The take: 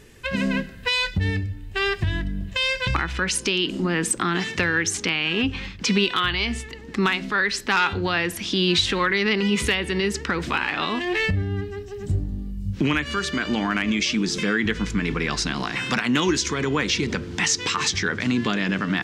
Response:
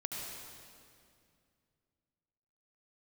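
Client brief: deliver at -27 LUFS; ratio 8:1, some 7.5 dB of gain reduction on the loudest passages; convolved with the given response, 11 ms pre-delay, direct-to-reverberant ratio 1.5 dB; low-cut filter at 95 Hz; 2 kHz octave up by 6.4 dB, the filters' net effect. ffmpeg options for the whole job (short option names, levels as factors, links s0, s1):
-filter_complex "[0:a]highpass=95,equalizer=f=2000:t=o:g=8,acompressor=threshold=0.1:ratio=8,asplit=2[s0][s1];[1:a]atrim=start_sample=2205,adelay=11[s2];[s1][s2]afir=irnorm=-1:irlink=0,volume=0.708[s3];[s0][s3]amix=inputs=2:normalize=0,volume=0.562"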